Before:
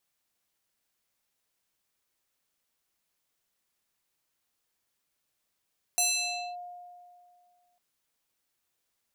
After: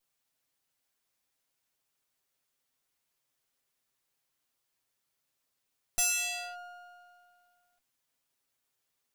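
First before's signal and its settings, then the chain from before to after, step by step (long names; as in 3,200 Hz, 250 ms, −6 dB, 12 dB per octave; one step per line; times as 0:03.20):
two-operator FM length 1.80 s, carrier 711 Hz, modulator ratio 4.73, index 3.3, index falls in 0.58 s linear, decay 2.20 s, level −21.5 dB
lower of the sound and its delayed copy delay 7.5 ms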